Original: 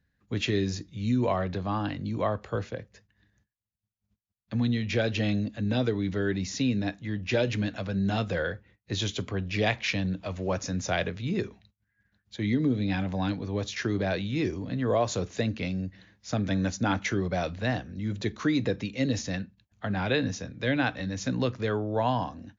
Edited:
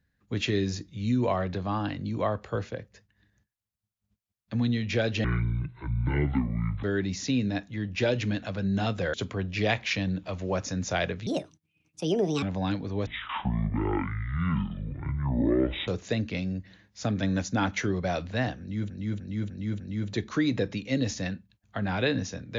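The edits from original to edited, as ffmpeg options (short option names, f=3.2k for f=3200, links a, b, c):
-filter_complex "[0:a]asplit=12[a][b][c][d][e][f][g][h][i][j][k][l];[a]atrim=end=5.244[m];[b]atrim=start=5.24:end=6.15,asetpts=PTS-STARTPTS,asetrate=25137,aresample=44100,atrim=end_sample=70405,asetpts=PTS-STARTPTS[n];[c]atrim=start=6.146:end=8.452[o];[d]atrim=start=9.108:end=11.244[p];[e]atrim=start=11.24:end=13,asetpts=PTS-STARTPTS,asetrate=67032,aresample=44100,atrim=end_sample=51063,asetpts=PTS-STARTPTS[q];[f]atrim=start=12.996:end=13.644[r];[g]atrim=start=13.64:end=15.16,asetpts=PTS-STARTPTS,asetrate=23814,aresample=44100,atrim=end_sample=124133,asetpts=PTS-STARTPTS[s];[h]atrim=start=15.156:end=18.182[t];[i]atrim=start=17.878:end=18.182[u];[j]atrim=start=17.878:end=18.182[v];[k]atrim=start=17.878:end=18.182[w];[l]atrim=start=17.878[x];[m][n]acrossfade=d=0.004:c1=hsin:c2=hsin[y];[y][o]acrossfade=d=0.004:c1=hsin:c2=hsin[z];[z][p]acrossfade=d=0.004:c1=hsin:c2=hsin[aa];[aa][q]acrossfade=d=0.004:c1=hsin:c2=hsin[ab];[ab][r]acrossfade=d=0.004:c1=hsin:c2=hsin[ac];[ac][s]acrossfade=d=0.004:c1=hsin:c2=hsin[ad];[ad][t]acrossfade=d=0.004:c1=hsin:c2=hsin[ae];[ae][u]acrossfade=d=0.004:c1=hsin:c2=hsin[af];[af][v]acrossfade=d=0.004:c1=hsin:c2=hsin[ag];[ag][w]acrossfade=d=0.004:c1=hsin:c2=hsin[ah];[ah][x]acrossfade=d=0.004:c1=hsin:c2=hsin"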